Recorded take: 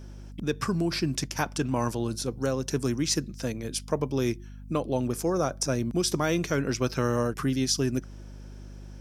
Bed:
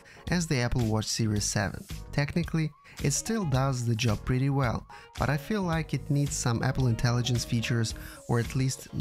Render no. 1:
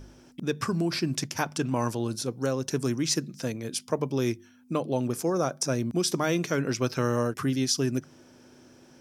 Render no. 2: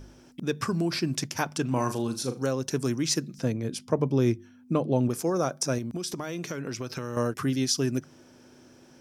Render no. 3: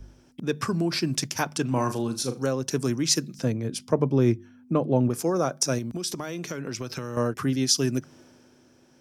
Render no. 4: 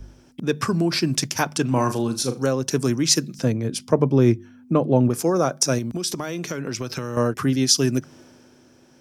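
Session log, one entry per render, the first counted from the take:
de-hum 50 Hz, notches 4
1.66–2.44 flutter echo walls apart 6.7 m, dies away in 0.27 s; 3.38–5.09 tilt -2 dB/oct; 5.78–7.17 compressor, threshold -29 dBFS
in parallel at -1 dB: compressor, threshold -36 dBFS, peak gain reduction 16.5 dB; on the sum: three-band expander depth 40%
gain +4.5 dB

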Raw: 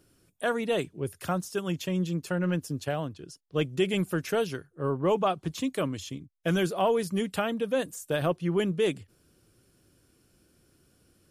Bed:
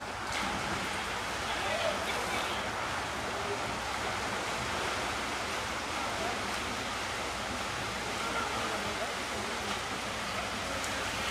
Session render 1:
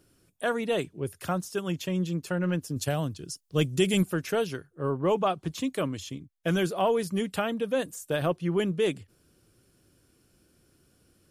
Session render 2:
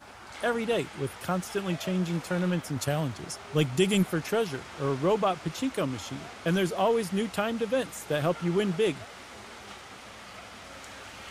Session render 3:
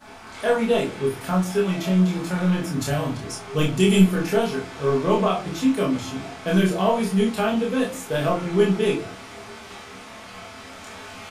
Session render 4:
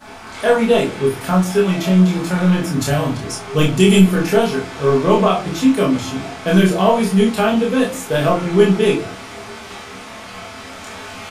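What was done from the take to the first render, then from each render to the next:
2.76–4.03 tone controls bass +6 dB, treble +12 dB
add bed -10 dB
doubler 27 ms -2 dB; shoebox room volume 190 m³, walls furnished, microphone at 1.5 m
gain +6.5 dB; limiter -1 dBFS, peak gain reduction 3 dB

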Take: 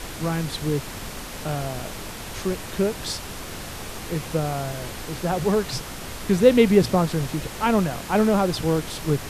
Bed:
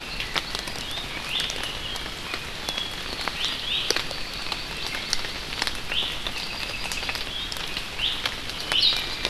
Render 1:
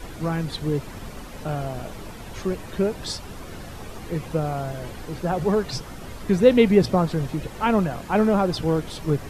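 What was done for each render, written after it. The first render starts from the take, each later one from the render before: denoiser 10 dB, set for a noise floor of -36 dBFS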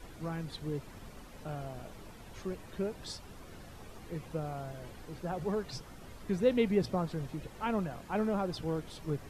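gain -12.5 dB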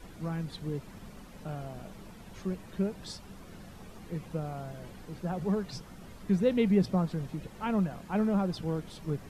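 bell 190 Hz +8.5 dB 0.47 oct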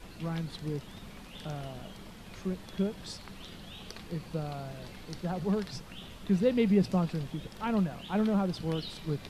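add bed -23.5 dB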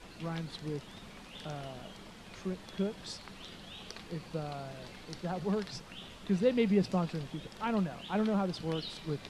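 LPF 9600 Hz 12 dB/oct; low shelf 200 Hz -7 dB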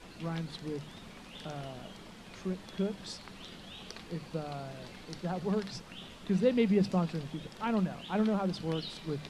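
bell 200 Hz +2.5 dB 1.4 oct; notches 50/100/150/200 Hz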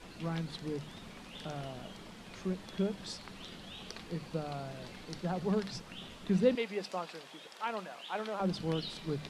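6.55–8.4 HPF 590 Hz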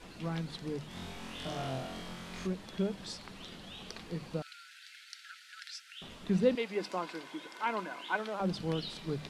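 0.88–2.47 flutter echo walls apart 3.9 m, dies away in 0.83 s; 4.42–6.02 brick-wall FIR high-pass 1300 Hz; 6.74–8.15 small resonant body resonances 310/1000/1500/2100 Hz, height 11 dB -> 15 dB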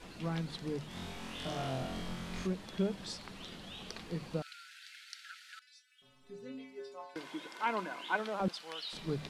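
1.8–2.42 low shelf 220 Hz +7 dB; 5.59–7.16 metallic resonator 130 Hz, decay 0.77 s, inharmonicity 0.008; 8.48–8.93 HPF 970 Hz

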